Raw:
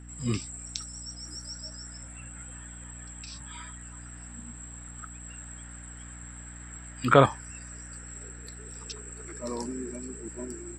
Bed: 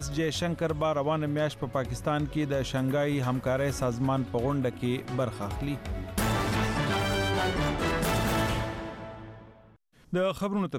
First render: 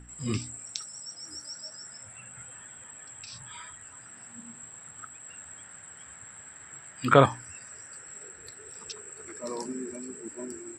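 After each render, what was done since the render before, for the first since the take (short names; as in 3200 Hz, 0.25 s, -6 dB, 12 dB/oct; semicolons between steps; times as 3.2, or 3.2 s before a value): de-hum 60 Hz, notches 5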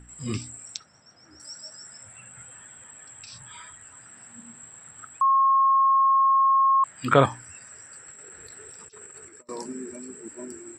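0.77–1.4 air absorption 230 m; 5.21–6.84 bleep 1080 Hz -16 dBFS; 8.08–9.49 negative-ratio compressor -46 dBFS, ratio -0.5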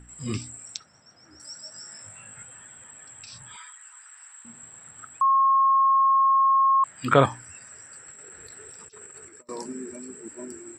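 1.72–2.43 flutter echo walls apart 3.3 m, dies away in 0.28 s; 3.56–4.45 inverse Chebyshev high-pass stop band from 460 Hz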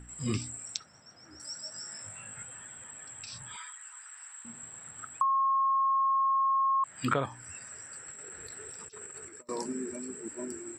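compressor 10:1, threshold -25 dBFS, peak gain reduction 14.5 dB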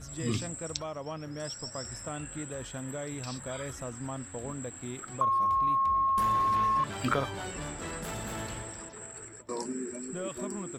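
add bed -11 dB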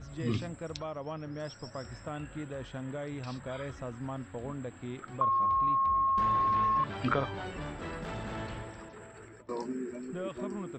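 air absorption 180 m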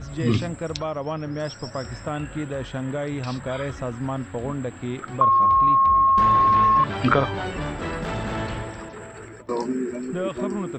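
gain +10.5 dB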